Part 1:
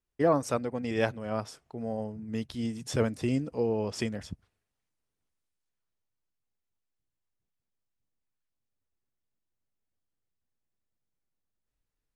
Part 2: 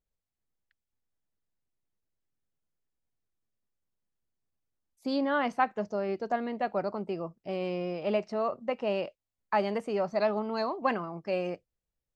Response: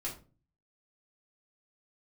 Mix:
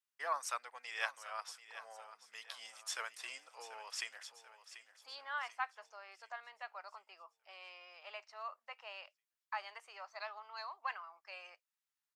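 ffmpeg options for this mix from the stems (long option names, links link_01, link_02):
-filter_complex "[0:a]volume=-2.5dB,asplit=2[link_01][link_02];[link_02]volume=-13.5dB[link_03];[1:a]volume=-7.5dB[link_04];[link_03]aecho=0:1:738|1476|2214|2952|3690|4428|5166:1|0.49|0.24|0.118|0.0576|0.0282|0.0138[link_05];[link_01][link_04][link_05]amix=inputs=3:normalize=0,highpass=frequency=1000:width=0.5412,highpass=frequency=1000:width=1.3066"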